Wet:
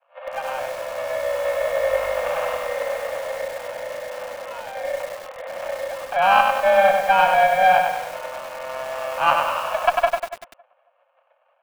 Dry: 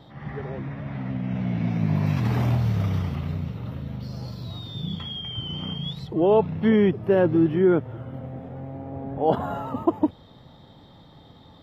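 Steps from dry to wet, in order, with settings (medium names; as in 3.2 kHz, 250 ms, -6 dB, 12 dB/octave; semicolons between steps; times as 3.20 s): expander -37 dBFS; in parallel at 0 dB: compression 10:1, threshold -26 dBFS, peak gain reduction 13 dB; on the sum: sample-rate reducer 1.6 kHz, jitter 0%; mistuned SSB +380 Hz 160–2600 Hz; Chebyshev shaper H 2 -30 dB, 4 -27 dB, 8 -39 dB, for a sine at -3 dBFS; on a send: tape echo 277 ms, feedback 30%, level -21 dB, low-pass 1.8 kHz; on the sum: bit-crushed delay 97 ms, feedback 55%, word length 6-bit, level -4 dB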